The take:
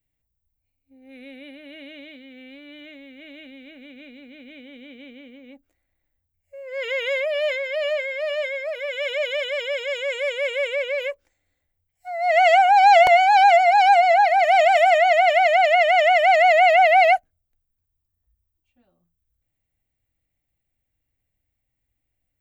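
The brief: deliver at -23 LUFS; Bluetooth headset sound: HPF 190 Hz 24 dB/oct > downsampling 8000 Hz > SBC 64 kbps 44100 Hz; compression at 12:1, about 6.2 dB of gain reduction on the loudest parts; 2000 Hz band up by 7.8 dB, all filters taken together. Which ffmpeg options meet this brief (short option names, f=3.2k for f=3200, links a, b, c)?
-af "equalizer=f=2k:t=o:g=8.5,acompressor=threshold=-14dB:ratio=12,highpass=f=190:w=0.5412,highpass=f=190:w=1.3066,aresample=8000,aresample=44100,volume=-5dB" -ar 44100 -c:a sbc -b:a 64k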